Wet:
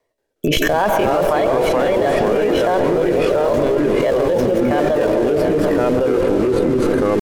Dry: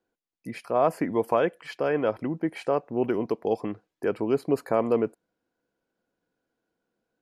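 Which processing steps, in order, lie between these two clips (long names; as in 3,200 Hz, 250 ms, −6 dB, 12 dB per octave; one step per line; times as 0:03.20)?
mains-hum notches 50/100/150/200/250/300/350/400/450 Hz
noise gate −59 dBFS, range −30 dB
notch filter 990 Hz, Q 8.6
comb filter 2.3 ms, depth 37%
in parallel at −9.5 dB: comparator with hysteresis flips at −29.5 dBFS
on the sum: pitch shifter +4.5 semitones
comb and all-pass reverb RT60 2.2 s, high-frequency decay 0.6×, pre-delay 80 ms, DRR 9.5 dB
rotating-speaker cabinet horn 0.7 Hz
delay with pitch and tempo change per echo 180 ms, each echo −3 semitones, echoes 3
on a send: echo with a time of its own for lows and highs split 800 Hz, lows 251 ms, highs 718 ms, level −14 dB
on the sum: envelope flattener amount 100%
level +3 dB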